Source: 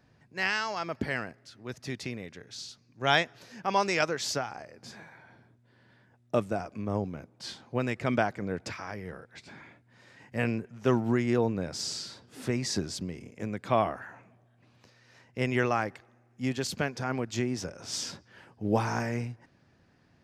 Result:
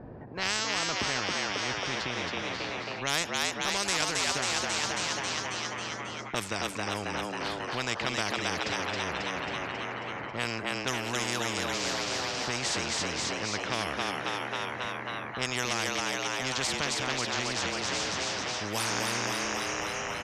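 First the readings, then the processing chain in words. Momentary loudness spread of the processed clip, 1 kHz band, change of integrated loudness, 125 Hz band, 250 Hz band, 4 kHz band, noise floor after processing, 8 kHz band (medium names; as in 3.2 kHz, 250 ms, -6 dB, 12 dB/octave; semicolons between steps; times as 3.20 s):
6 LU, +1.0 dB, +1.0 dB, -5.5 dB, -4.5 dB, +8.0 dB, -38 dBFS, +8.5 dB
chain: level-controlled noise filter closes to 650 Hz, open at -22 dBFS; frequency-shifting echo 271 ms, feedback 57%, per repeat +94 Hz, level -4 dB; in parallel at +1 dB: compression, threshold -34 dBFS, peak gain reduction 16 dB; on the sum: spectrum-flattening compressor 4:1; trim -5.5 dB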